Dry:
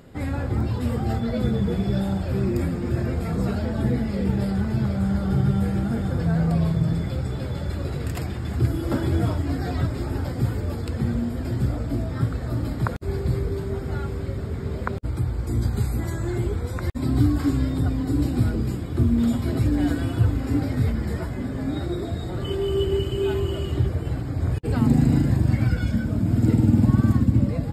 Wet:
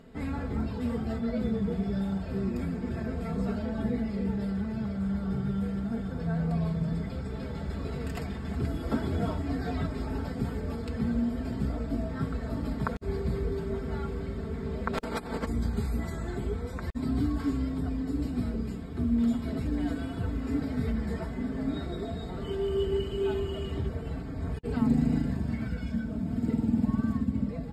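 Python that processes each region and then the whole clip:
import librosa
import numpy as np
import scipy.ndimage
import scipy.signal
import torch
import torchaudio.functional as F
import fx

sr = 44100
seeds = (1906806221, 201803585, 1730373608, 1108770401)

y = fx.spec_clip(x, sr, under_db=23, at=(14.93, 15.44), fade=0.02)
y = fx.over_compress(y, sr, threshold_db=-30.0, ratio=-0.5, at=(14.93, 15.44), fade=0.02)
y = fx.high_shelf(y, sr, hz=7400.0, db=-10.5)
y = y + 0.67 * np.pad(y, (int(4.5 * sr / 1000.0), 0))[:len(y)]
y = fx.rider(y, sr, range_db=3, speed_s=2.0)
y = y * 10.0 ** (-8.0 / 20.0)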